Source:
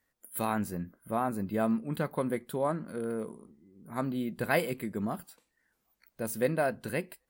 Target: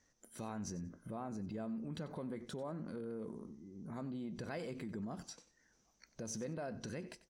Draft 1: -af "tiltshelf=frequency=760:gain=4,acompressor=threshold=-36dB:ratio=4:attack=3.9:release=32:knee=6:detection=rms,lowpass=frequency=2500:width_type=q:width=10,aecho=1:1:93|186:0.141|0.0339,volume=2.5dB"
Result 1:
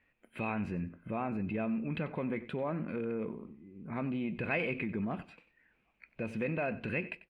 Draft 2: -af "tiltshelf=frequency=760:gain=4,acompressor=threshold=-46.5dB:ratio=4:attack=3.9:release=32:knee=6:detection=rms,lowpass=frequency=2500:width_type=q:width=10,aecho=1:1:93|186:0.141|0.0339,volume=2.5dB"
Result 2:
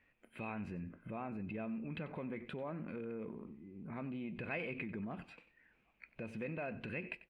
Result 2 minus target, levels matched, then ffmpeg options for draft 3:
2,000 Hz band +8.0 dB
-af "tiltshelf=frequency=760:gain=4,acompressor=threshold=-46.5dB:ratio=4:attack=3.9:release=32:knee=6:detection=rms,lowpass=frequency=6000:width_type=q:width=10,aecho=1:1:93|186:0.141|0.0339,volume=2.5dB"

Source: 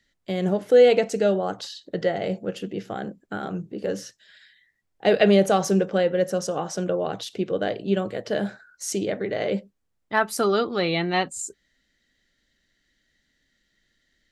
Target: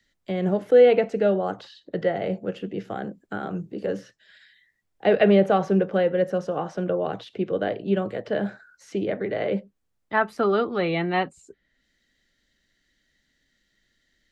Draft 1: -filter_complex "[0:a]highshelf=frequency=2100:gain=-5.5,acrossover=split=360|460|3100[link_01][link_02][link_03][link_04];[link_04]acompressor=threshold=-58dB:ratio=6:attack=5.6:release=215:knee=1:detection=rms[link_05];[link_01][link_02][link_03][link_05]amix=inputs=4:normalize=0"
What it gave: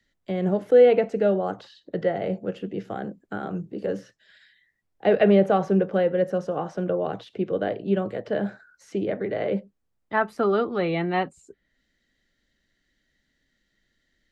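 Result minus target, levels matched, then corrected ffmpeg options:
4,000 Hz band −3.0 dB
-filter_complex "[0:a]acrossover=split=360|460|3100[link_01][link_02][link_03][link_04];[link_04]acompressor=threshold=-58dB:ratio=6:attack=5.6:release=215:knee=1:detection=rms[link_05];[link_01][link_02][link_03][link_05]amix=inputs=4:normalize=0"

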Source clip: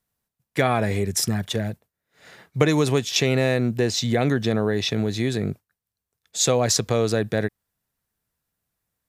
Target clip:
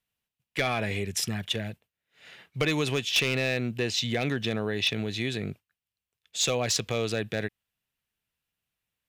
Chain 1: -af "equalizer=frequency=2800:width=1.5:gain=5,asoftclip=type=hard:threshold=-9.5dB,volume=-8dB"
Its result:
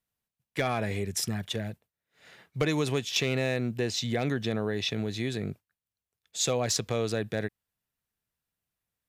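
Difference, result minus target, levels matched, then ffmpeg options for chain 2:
2,000 Hz band −3.0 dB
-af "equalizer=frequency=2800:width=1.5:gain=13.5,asoftclip=type=hard:threshold=-9.5dB,volume=-8dB"

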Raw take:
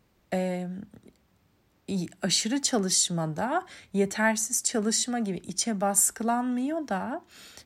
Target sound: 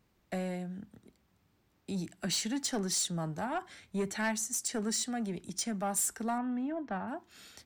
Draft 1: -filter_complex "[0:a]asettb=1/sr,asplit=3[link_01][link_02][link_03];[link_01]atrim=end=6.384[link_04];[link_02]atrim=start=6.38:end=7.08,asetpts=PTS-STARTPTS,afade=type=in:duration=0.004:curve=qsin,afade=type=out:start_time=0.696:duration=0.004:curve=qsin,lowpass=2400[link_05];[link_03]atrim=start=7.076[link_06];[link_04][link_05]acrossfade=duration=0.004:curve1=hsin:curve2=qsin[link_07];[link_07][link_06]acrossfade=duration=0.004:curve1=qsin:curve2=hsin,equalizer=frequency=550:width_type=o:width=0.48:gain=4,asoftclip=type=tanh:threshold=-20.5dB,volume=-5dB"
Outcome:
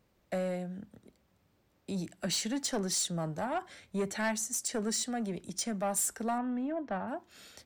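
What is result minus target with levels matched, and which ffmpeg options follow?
500 Hz band +2.5 dB
-filter_complex "[0:a]asettb=1/sr,asplit=3[link_01][link_02][link_03];[link_01]atrim=end=6.384[link_04];[link_02]atrim=start=6.38:end=7.08,asetpts=PTS-STARTPTS,afade=type=in:duration=0.004:curve=qsin,afade=type=out:start_time=0.696:duration=0.004:curve=qsin,lowpass=2400[link_05];[link_03]atrim=start=7.076[link_06];[link_04][link_05]acrossfade=duration=0.004:curve1=hsin:curve2=qsin[link_07];[link_07][link_06]acrossfade=duration=0.004:curve1=qsin:curve2=hsin,equalizer=frequency=550:width_type=o:width=0.48:gain=-3,asoftclip=type=tanh:threshold=-20.5dB,volume=-5dB"

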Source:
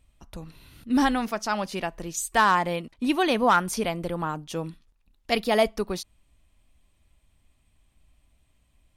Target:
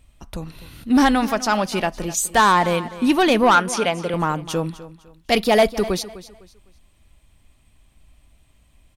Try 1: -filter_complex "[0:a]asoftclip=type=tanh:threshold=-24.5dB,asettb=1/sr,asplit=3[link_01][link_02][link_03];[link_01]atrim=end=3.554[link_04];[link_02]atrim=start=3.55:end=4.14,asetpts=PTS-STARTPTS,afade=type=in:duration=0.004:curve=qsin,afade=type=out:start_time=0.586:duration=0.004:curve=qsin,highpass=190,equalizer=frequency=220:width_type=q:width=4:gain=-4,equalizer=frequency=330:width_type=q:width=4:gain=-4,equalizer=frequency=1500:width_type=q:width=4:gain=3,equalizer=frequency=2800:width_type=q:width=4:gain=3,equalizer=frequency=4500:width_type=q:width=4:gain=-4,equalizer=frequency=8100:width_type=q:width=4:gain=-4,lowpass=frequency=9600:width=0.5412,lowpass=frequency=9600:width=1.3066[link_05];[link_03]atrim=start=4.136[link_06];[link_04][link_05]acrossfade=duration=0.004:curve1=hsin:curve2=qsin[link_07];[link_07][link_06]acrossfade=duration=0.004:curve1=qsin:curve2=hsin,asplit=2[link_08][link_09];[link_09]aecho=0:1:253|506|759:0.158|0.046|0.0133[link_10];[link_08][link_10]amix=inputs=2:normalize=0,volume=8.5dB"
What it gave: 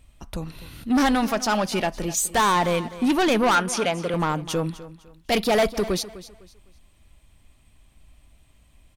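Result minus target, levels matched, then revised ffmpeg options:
soft clipping: distortion +7 dB
-filter_complex "[0:a]asoftclip=type=tanh:threshold=-16.5dB,asettb=1/sr,asplit=3[link_01][link_02][link_03];[link_01]atrim=end=3.554[link_04];[link_02]atrim=start=3.55:end=4.14,asetpts=PTS-STARTPTS,afade=type=in:duration=0.004:curve=qsin,afade=type=out:start_time=0.586:duration=0.004:curve=qsin,highpass=190,equalizer=frequency=220:width_type=q:width=4:gain=-4,equalizer=frequency=330:width_type=q:width=4:gain=-4,equalizer=frequency=1500:width_type=q:width=4:gain=3,equalizer=frequency=2800:width_type=q:width=4:gain=3,equalizer=frequency=4500:width_type=q:width=4:gain=-4,equalizer=frequency=8100:width_type=q:width=4:gain=-4,lowpass=frequency=9600:width=0.5412,lowpass=frequency=9600:width=1.3066[link_05];[link_03]atrim=start=4.136[link_06];[link_04][link_05]acrossfade=duration=0.004:curve1=hsin:curve2=qsin[link_07];[link_07][link_06]acrossfade=duration=0.004:curve1=qsin:curve2=hsin,asplit=2[link_08][link_09];[link_09]aecho=0:1:253|506|759:0.158|0.046|0.0133[link_10];[link_08][link_10]amix=inputs=2:normalize=0,volume=8.5dB"

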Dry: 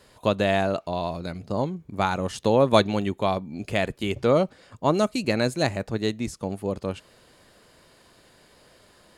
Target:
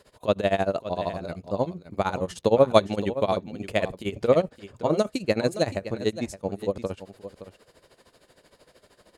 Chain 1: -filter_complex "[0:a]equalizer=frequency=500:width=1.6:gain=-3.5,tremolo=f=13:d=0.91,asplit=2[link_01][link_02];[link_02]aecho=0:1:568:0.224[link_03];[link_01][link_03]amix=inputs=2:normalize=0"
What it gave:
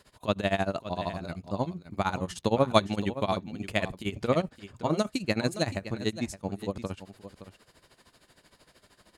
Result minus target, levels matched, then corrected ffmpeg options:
500 Hz band −2.5 dB
-filter_complex "[0:a]equalizer=frequency=500:width=1.6:gain=5.5,tremolo=f=13:d=0.91,asplit=2[link_01][link_02];[link_02]aecho=0:1:568:0.224[link_03];[link_01][link_03]amix=inputs=2:normalize=0"

